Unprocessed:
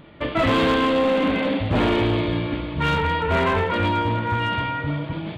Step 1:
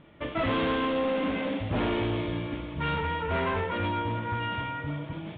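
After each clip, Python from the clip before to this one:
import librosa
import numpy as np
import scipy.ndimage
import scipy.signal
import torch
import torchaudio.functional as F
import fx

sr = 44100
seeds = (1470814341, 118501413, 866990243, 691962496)

y = scipy.signal.sosfilt(scipy.signal.butter(8, 3700.0, 'lowpass', fs=sr, output='sos'), x)
y = F.gain(torch.from_numpy(y), -8.0).numpy()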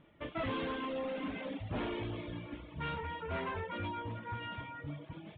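y = fx.dereverb_blind(x, sr, rt60_s=0.81)
y = F.gain(torch.from_numpy(y), -8.0).numpy()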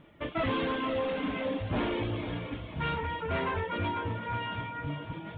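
y = fx.echo_feedback(x, sr, ms=498, feedback_pct=42, wet_db=-10.0)
y = F.gain(torch.from_numpy(y), 6.5).numpy()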